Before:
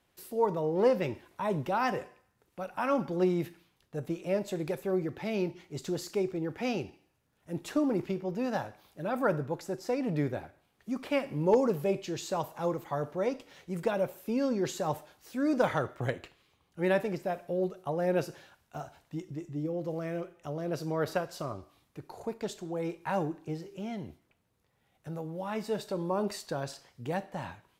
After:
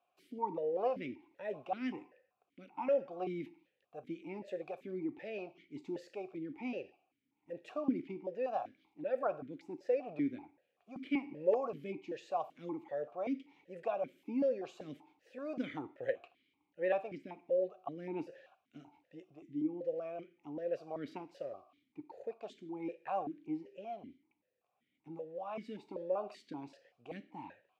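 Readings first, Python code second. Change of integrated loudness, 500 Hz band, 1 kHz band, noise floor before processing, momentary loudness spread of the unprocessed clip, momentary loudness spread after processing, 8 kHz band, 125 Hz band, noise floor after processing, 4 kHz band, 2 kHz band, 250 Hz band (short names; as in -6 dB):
-7.0 dB, -6.5 dB, -7.0 dB, -73 dBFS, 13 LU, 16 LU, under -20 dB, -17.5 dB, -83 dBFS, -13.5 dB, -10.5 dB, -8.0 dB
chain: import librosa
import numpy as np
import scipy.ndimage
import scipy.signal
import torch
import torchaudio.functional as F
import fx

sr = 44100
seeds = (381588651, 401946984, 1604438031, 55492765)

y = fx.vowel_held(x, sr, hz=5.2)
y = y * 10.0 ** (3.5 / 20.0)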